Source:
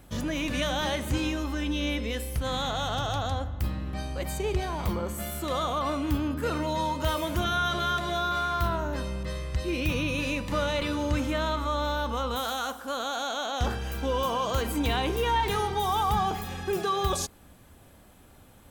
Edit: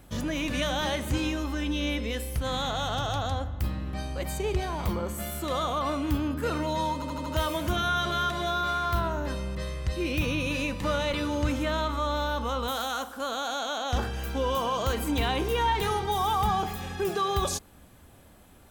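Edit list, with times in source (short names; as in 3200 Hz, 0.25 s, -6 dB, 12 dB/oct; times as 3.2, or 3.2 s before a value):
6.94 stutter 0.08 s, 5 plays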